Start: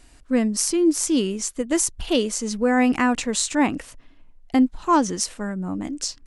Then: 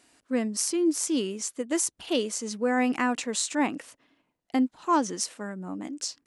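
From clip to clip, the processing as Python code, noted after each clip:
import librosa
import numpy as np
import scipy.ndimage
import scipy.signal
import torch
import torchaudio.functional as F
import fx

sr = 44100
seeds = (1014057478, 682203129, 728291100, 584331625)

y = scipy.signal.sosfilt(scipy.signal.butter(2, 220.0, 'highpass', fs=sr, output='sos'), x)
y = F.gain(torch.from_numpy(y), -5.0).numpy()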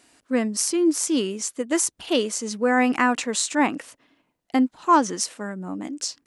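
y = fx.dynamic_eq(x, sr, hz=1300.0, q=0.9, threshold_db=-37.0, ratio=4.0, max_db=4)
y = F.gain(torch.from_numpy(y), 4.0).numpy()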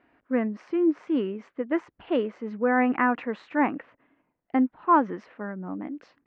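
y = scipy.signal.sosfilt(scipy.signal.butter(4, 2100.0, 'lowpass', fs=sr, output='sos'), x)
y = F.gain(torch.from_numpy(y), -2.5).numpy()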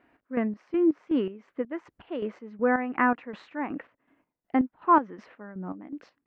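y = fx.chopper(x, sr, hz=2.7, depth_pct=65, duty_pct=45)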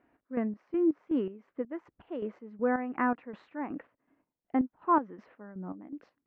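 y = fx.high_shelf(x, sr, hz=2000.0, db=-10.5)
y = F.gain(torch.from_numpy(y), -3.5).numpy()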